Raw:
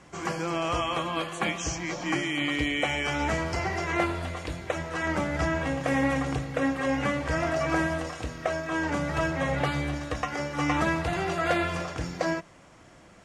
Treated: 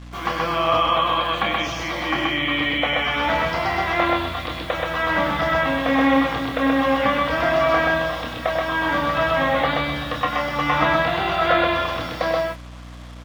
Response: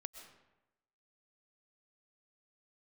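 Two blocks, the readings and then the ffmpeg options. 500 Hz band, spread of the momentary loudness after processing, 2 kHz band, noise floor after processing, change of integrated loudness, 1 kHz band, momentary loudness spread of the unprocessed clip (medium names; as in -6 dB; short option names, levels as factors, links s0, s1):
+8.0 dB, 7 LU, +8.0 dB, -37 dBFS, +8.0 dB, +10.5 dB, 6 LU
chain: -filter_complex "[0:a]highpass=150,equalizer=f=170:t=q:w=4:g=-6,equalizer=f=380:t=q:w=4:g=-10,equalizer=f=1100:t=q:w=4:g=5,equalizer=f=3500:t=q:w=4:g=10,lowpass=f=4700:w=0.5412,lowpass=f=4700:w=1.3066,asplit=2[s0][s1];[s1]adelay=26,volume=0.376[s2];[s0][s2]amix=inputs=2:normalize=0,aecho=1:1:96.21|128.3:0.316|0.794,acrusher=bits=7:mix=0:aa=0.5,acrossover=split=2500[s3][s4];[s4]acompressor=threshold=0.0178:ratio=4:attack=1:release=60[s5];[s3][s5]amix=inputs=2:normalize=0,aeval=exprs='val(0)+0.00794*(sin(2*PI*60*n/s)+sin(2*PI*2*60*n/s)/2+sin(2*PI*3*60*n/s)/3+sin(2*PI*4*60*n/s)/4+sin(2*PI*5*60*n/s)/5)':c=same,volume=1.78"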